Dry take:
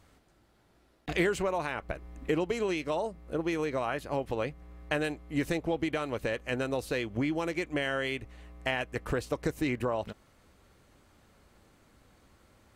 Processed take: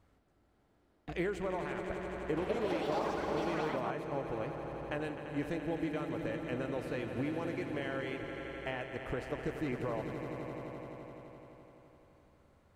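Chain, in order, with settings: treble shelf 2.4 kHz -10 dB; echo with a slow build-up 85 ms, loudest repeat 5, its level -11 dB; 2.13–4.18 s: ever faster or slower copies 241 ms, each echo +5 st, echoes 3; trim -6.5 dB

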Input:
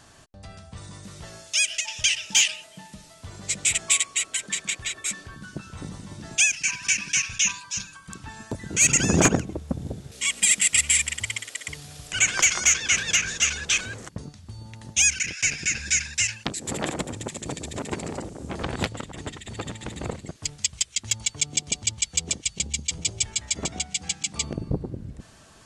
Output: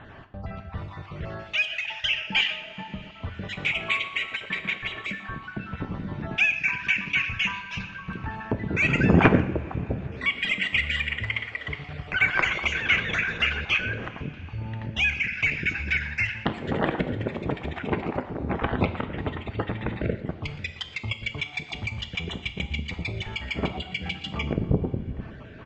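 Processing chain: random holes in the spectrogram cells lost 24%; low-pass 2.6 kHz 24 dB/octave; on a send: delay 118 ms -20.5 dB; on the sum: two-slope reverb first 0.59 s, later 4.2 s, from -19 dB, DRR 8.5 dB; in parallel at 0 dB: compression, threshold -39 dBFS, peak gain reduction 22 dB; on the sum: trim +3 dB; MP3 80 kbps 48 kHz

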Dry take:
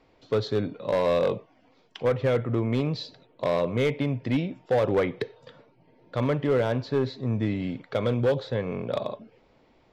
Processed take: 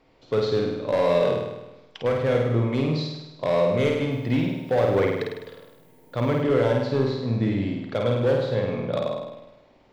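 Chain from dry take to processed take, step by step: flutter echo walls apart 8.8 m, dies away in 0.99 s; 4.10–6.41 s: added noise violet -65 dBFS

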